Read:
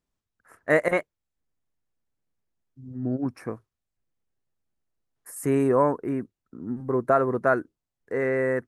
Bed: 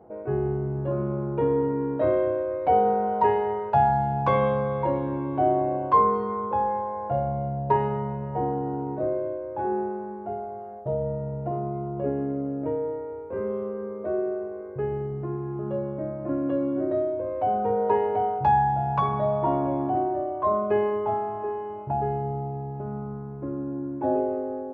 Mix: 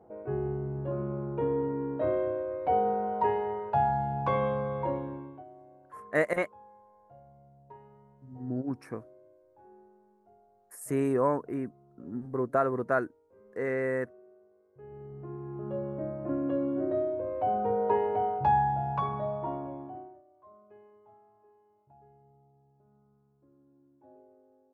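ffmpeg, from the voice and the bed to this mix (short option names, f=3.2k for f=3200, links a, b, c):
-filter_complex "[0:a]adelay=5450,volume=-5.5dB[a];[1:a]volume=19dB,afade=t=out:st=4.9:d=0.54:silence=0.0707946,afade=t=in:st=14.72:d=1.26:silence=0.0562341,afade=t=out:st=18.57:d=1.65:silence=0.0375837[b];[a][b]amix=inputs=2:normalize=0"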